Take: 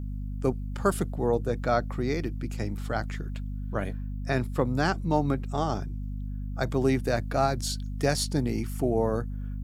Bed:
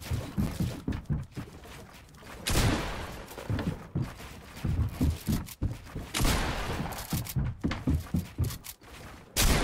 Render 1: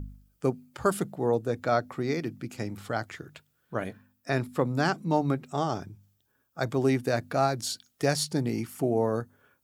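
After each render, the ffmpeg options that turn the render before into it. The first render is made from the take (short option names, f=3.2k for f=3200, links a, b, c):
-af "bandreject=f=50:t=h:w=4,bandreject=f=100:t=h:w=4,bandreject=f=150:t=h:w=4,bandreject=f=200:t=h:w=4,bandreject=f=250:t=h:w=4"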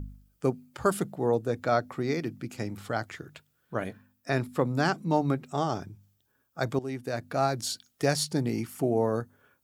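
-filter_complex "[0:a]asplit=2[a][b];[a]atrim=end=6.79,asetpts=PTS-STARTPTS,afade=t=out:st=6.786:d=0.004:c=hsin:silence=0.177828[c];[b]atrim=start=6.79,asetpts=PTS-STARTPTS,afade=t=in:d=0.77:silence=0.177828[d];[c][d]concat=n=2:v=0:a=1"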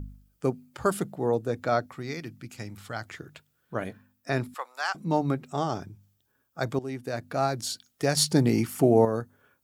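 -filter_complex "[0:a]asettb=1/sr,asplit=3[a][b][c];[a]atrim=end=1.864[d];[b]atrim=start=1.86:end=3.05,asetpts=PTS-STARTPTS,afade=t=in:d=0.004:c=qsin,afade=t=out:st=1.186:d=0.004:c=qsin,equalizer=f=390:w=0.45:g=-8[e];[c]atrim=start=3.046[f];[d][e]acrossfade=d=0.004:c1=hsin:c2=qsin[g];[g][f]acrossfade=d=0.004:c1=qsin:c2=hsin,asettb=1/sr,asplit=3[h][i][j];[h]atrim=end=4.544[k];[i]atrim=start=4.54:end=4.95,asetpts=PTS-STARTPTS,afade=t=in:d=0.004:c=qsin,afade=t=out:st=0.406:d=0.004:c=qsin,highpass=f=800:w=0.5412,highpass=f=800:w=1.3066[l];[j]atrim=start=4.946[m];[k][l]acrossfade=d=0.004:c1=hsin:c2=qsin[n];[n][m]acrossfade=d=0.004:c1=qsin:c2=hsin,asplit=3[o][p][q];[o]atrim=end=8.172[r];[p]atrim=start=8.168:end=9.052,asetpts=PTS-STARTPTS,volume=6.5dB[s];[q]atrim=start=9.048[t];[r][s]acrossfade=d=0.004:c1=hsin:c2=hsin[u];[u][t]acrossfade=d=0.004:c1=hsin:c2=hsin"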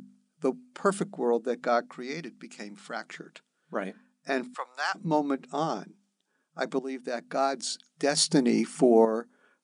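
-af "afftfilt=real='re*between(b*sr/4096,160,10000)':imag='im*between(b*sr/4096,160,10000)':win_size=4096:overlap=0.75"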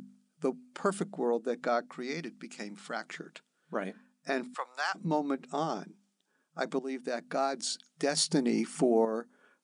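-af "acompressor=threshold=-32dB:ratio=1.5"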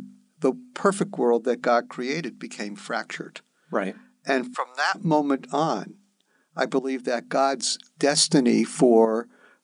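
-af "volume=9dB"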